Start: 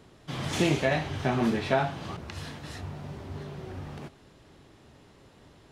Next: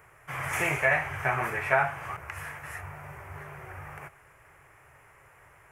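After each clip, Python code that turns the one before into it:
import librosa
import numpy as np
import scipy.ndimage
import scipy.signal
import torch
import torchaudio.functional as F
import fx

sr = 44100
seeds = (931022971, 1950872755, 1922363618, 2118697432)

y = fx.curve_eq(x, sr, hz=(140.0, 220.0, 430.0, 1300.0, 2300.0, 3900.0, 5800.0, 12000.0), db=(0, -19, -1, 12, 13, -17, -2, 15))
y = y * 10.0 ** (-4.5 / 20.0)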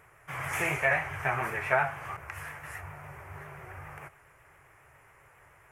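y = fx.vibrato(x, sr, rate_hz=7.3, depth_cents=53.0)
y = y * 10.0 ** (-2.0 / 20.0)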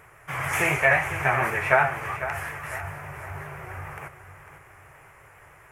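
y = fx.echo_feedback(x, sr, ms=500, feedback_pct=44, wet_db=-12)
y = y * 10.0 ** (6.5 / 20.0)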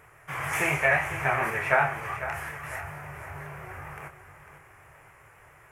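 y = fx.doubler(x, sr, ms=27.0, db=-7)
y = y * 10.0 ** (-3.5 / 20.0)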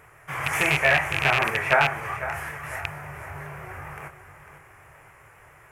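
y = fx.rattle_buzz(x, sr, strikes_db=-34.0, level_db=-12.0)
y = y * 10.0 ** (2.5 / 20.0)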